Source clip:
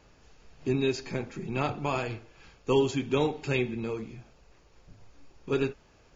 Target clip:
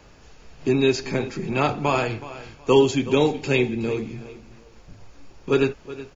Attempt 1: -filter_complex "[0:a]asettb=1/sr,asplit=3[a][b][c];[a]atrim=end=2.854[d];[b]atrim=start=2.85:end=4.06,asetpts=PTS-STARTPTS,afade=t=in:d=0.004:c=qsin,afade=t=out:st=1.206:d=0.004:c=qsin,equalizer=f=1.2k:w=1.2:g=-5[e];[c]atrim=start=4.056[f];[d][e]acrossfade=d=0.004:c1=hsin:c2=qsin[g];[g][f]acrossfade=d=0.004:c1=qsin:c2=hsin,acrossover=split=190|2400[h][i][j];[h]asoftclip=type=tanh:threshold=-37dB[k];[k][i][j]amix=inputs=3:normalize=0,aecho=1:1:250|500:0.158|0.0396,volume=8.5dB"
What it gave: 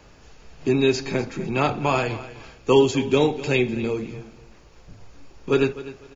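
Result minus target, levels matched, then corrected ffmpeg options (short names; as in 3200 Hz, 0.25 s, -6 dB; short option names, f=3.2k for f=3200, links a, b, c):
echo 0.121 s early
-filter_complex "[0:a]asettb=1/sr,asplit=3[a][b][c];[a]atrim=end=2.854[d];[b]atrim=start=2.85:end=4.06,asetpts=PTS-STARTPTS,afade=t=in:d=0.004:c=qsin,afade=t=out:st=1.206:d=0.004:c=qsin,equalizer=f=1.2k:w=1.2:g=-5[e];[c]atrim=start=4.056[f];[d][e]acrossfade=d=0.004:c1=hsin:c2=qsin[g];[g][f]acrossfade=d=0.004:c1=qsin:c2=hsin,acrossover=split=190|2400[h][i][j];[h]asoftclip=type=tanh:threshold=-37dB[k];[k][i][j]amix=inputs=3:normalize=0,aecho=1:1:371|742:0.158|0.0396,volume=8.5dB"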